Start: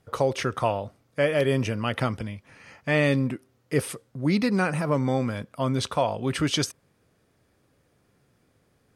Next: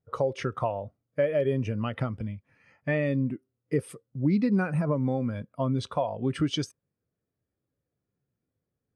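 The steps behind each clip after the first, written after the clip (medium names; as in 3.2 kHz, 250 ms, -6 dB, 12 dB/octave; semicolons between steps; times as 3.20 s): compression 4:1, threshold -25 dBFS, peak gain reduction 7.5 dB; spectral contrast expander 1.5:1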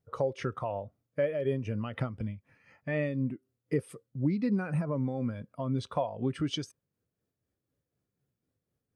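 in parallel at +1.5 dB: compression, threshold -35 dBFS, peak gain reduction 14.5 dB; on the sum: tremolo 4 Hz, depth 45%; trim -5 dB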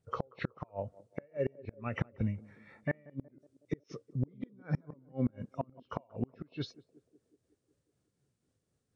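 knee-point frequency compression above 2 kHz 1.5:1; inverted gate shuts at -23 dBFS, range -35 dB; band-passed feedback delay 184 ms, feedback 67%, band-pass 390 Hz, level -18.5 dB; trim +3 dB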